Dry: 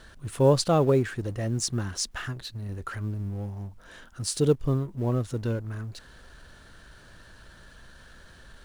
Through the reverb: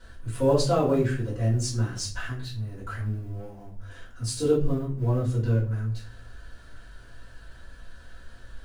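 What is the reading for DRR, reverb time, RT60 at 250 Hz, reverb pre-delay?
-9.0 dB, 0.40 s, 0.65 s, 3 ms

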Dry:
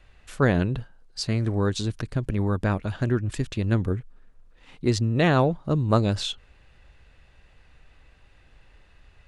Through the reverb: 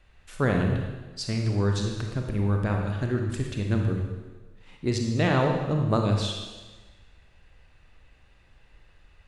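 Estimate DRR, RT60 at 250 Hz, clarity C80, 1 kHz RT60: 2.0 dB, 1.3 s, 5.5 dB, 1.3 s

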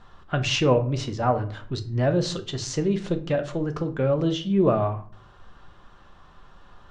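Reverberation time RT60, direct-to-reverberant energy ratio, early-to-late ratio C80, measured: 0.45 s, 6.0 dB, 18.5 dB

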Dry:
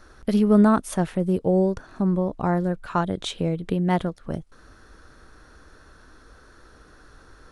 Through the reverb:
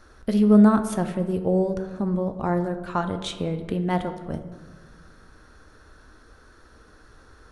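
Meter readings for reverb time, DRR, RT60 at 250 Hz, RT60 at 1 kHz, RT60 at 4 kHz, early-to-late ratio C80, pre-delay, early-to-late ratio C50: 1.4 s, 7.5 dB, 1.8 s, 1.3 s, 0.75 s, 12.0 dB, 4 ms, 10.5 dB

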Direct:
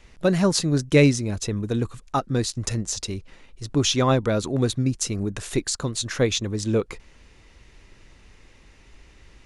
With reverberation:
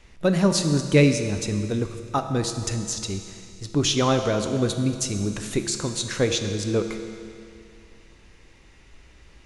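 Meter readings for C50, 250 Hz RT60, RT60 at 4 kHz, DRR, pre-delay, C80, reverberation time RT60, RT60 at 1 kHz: 7.5 dB, 2.4 s, 2.3 s, 6.0 dB, 6 ms, 8.5 dB, 2.4 s, 2.4 s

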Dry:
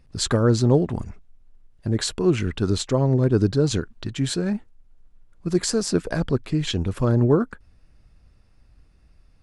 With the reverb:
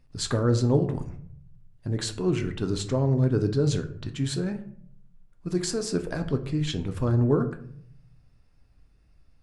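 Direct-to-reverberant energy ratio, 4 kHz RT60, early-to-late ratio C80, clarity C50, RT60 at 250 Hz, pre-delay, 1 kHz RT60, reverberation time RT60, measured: 6.5 dB, 0.35 s, 16.0 dB, 12.5 dB, 1.0 s, 7 ms, 0.55 s, 0.60 s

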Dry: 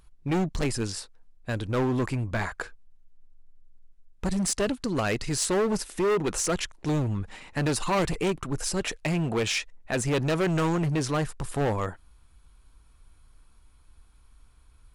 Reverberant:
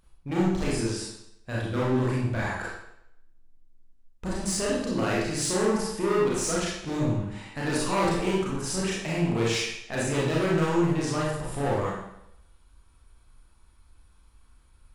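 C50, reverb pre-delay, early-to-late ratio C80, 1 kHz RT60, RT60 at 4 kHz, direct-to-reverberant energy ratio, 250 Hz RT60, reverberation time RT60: -0.5 dB, 30 ms, 3.5 dB, 0.75 s, 0.70 s, -6.0 dB, 0.75 s, 0.75 s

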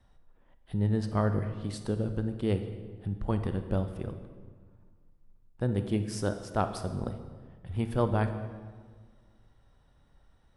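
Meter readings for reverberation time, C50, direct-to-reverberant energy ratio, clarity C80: 1.6 s, 9.0 dB, 8.0 dB, 10.5 dB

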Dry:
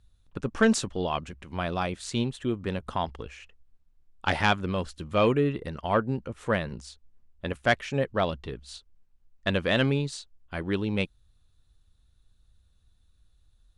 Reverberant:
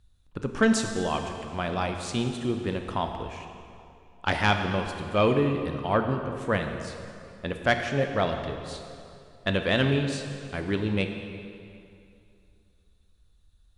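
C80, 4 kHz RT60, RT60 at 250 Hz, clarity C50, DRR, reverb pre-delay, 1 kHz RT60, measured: 6.5 dB, 2.0 s, 2.8 s, 6.0 dB, 5.0 dB, 20 ms, 2.6 s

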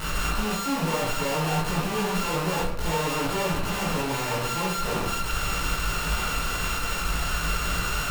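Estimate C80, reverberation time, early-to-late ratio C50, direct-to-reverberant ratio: 6.5 dB, 0.65 s, 3.0 dB, -7.0 dB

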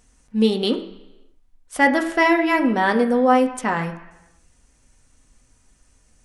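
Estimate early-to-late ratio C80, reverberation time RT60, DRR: 13.0 dB, 1.0 s, 3.0 dB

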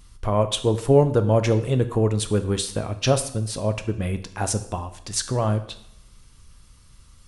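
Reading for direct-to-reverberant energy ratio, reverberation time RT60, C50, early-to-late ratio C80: 9.0 dB, 0.75 s, 13.0 dB, 15.5 dB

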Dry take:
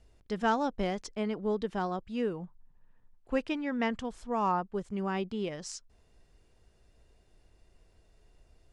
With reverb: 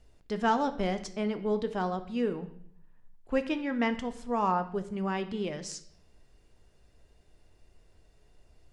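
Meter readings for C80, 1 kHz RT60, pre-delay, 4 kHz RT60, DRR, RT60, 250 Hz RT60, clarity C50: 16.0 dB, 0.55 s, 3 ms, 0.60 s, 8.5 dB, 0.65 s, 0.80 s, 13.5 dB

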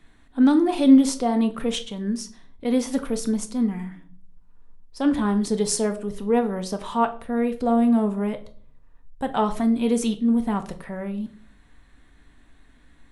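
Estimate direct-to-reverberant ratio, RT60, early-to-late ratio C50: 7.0 dB, 0.45 s, 15.0 dB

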